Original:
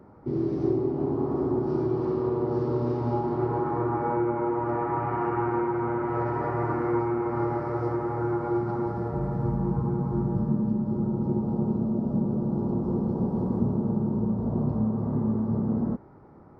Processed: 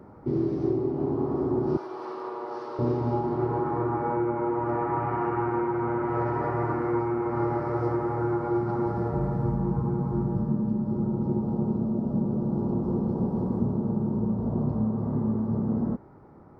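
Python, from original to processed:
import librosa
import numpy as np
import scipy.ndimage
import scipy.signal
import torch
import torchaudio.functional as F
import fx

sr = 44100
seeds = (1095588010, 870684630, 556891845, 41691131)

y = fx.highpass(x, sr, hz=850.0, slope=12, at=(1.77, 2.79))
y = fx.rider(y, sr, range_db=4, speed_s=0.5)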